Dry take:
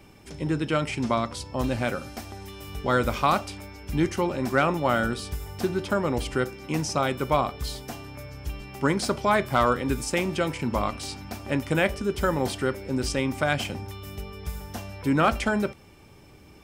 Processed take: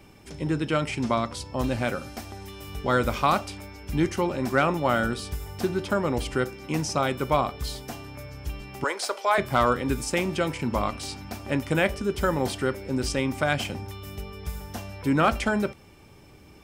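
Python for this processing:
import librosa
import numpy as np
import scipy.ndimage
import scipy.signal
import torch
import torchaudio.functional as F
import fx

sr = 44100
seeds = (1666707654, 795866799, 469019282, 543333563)

y = fx.highpass(x, sr, hz=470.0, slope=24, at=(8.84, 9.38))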